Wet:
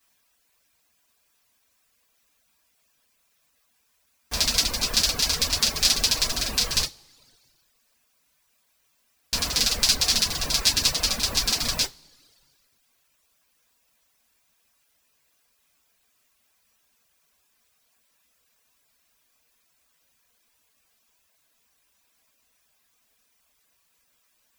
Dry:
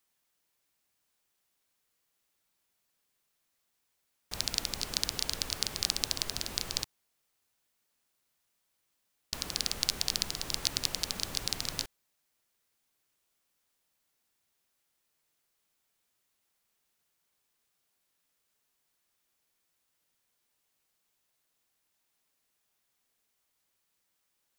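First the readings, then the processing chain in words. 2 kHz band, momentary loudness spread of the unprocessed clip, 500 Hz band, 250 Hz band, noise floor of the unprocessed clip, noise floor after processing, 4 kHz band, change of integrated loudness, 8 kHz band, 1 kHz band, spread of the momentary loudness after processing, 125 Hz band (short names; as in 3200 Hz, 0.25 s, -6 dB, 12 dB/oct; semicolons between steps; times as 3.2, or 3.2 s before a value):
+11.5 dB, 6 LU, +9.5 dB, +9.5 dB, -79 dBFS, -69 dBFS, +10.5 dB, +10.5 dB, +11.0 dB, +10.5 dB, 6 LU, +10.0 dB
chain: two-slope reverb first 0.24 s, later 1.6 s, from -21 dB, DRR -9 dB; reverb removal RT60 0.72 s; gain +3.5 dB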